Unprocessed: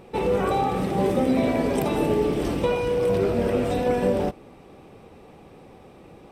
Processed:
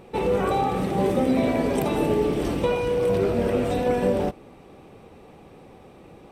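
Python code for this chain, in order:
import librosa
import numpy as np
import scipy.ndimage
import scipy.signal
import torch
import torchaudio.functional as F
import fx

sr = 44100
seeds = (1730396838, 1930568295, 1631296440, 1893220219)

y = fx.notch(x, sr, hz=5100.0, q=24.0)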